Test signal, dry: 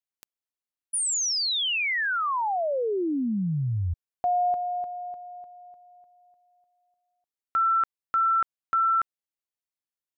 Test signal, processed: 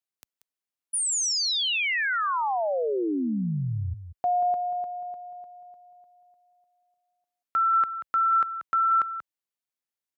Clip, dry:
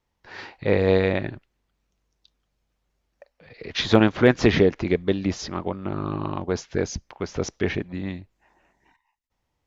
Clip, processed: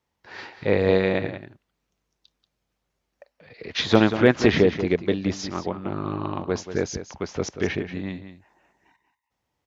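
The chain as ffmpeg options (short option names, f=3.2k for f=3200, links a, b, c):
-af "highpass=45,lowshelf=f=68:g=-8,aecho=1:1:185:0.282"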